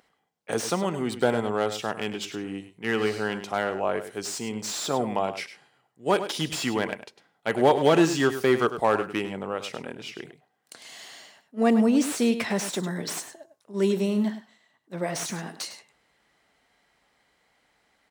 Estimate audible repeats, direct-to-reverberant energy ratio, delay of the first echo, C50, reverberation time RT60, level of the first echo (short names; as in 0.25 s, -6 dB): 1, none, 0.102 s, none, none, -11.5 dB